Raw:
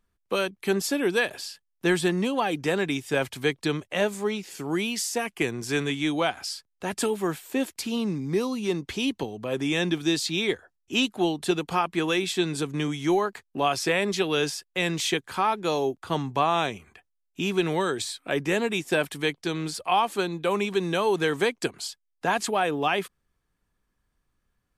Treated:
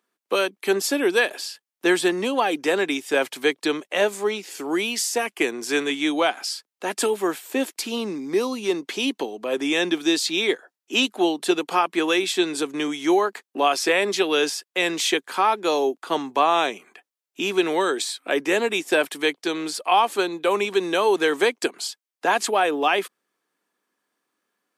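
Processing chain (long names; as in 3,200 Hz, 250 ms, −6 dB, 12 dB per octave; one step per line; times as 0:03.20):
high-pass filter 270 Hz 24 dB per octave
level +4.5 dB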